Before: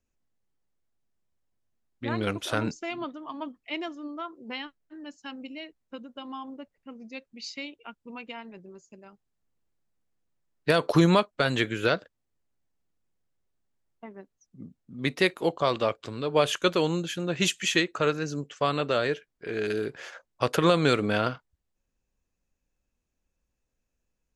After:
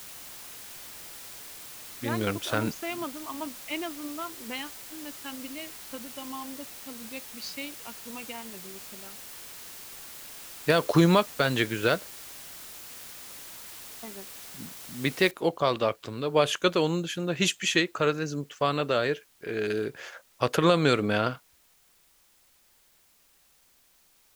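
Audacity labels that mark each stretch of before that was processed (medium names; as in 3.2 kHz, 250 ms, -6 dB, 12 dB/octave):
6.170000	8.880000	peaking EQ 1.5 kHz -7 dB 0.32 oct
15.310000	15.310000	noise floor step -44 dB -63 dB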